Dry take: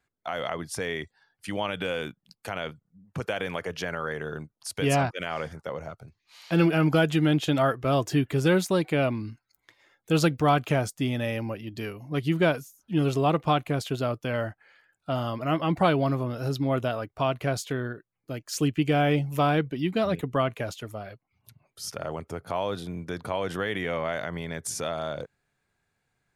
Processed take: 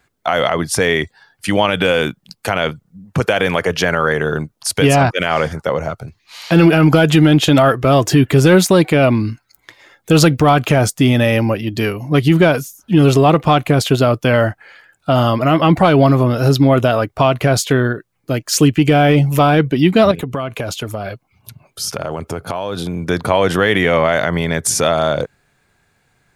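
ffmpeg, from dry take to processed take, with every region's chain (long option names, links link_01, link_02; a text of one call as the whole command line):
ffmpeg -i in.wav -filter_complex "[0:a]asettb=1/sr,asplit=3[link_01][link_02][link_03];[link_01]atrim=end=20.114[link_04];[link_02]atrim=start=20.11:end=23.04,asetpts=PTS-STARTPTS,afade=type=in:duration=0.004:curve=qsin,afade=type=out:start_time=2.926:duration=0.004:curve=qsin,bandreject=frequency=1900:width=9.3,acompressor=threshold=-34dB:ratio=6:attack=3.2:release=140:knee=1:detection=peak[link_05];[link_03]atrim=start=23.036[link_06];[link_04][link_05]acrossfade=duration=0.004:curve1=hsin:curve2=qsin[link_07];[link_07][link_06]acrossfade=duration=0.004:curve1=qsin:curve2=hsin,acontrast=86,alimiter=level_in=10dB:limit=-1dB:release=50:level=0:latency=1,volume=-1dB" out.wav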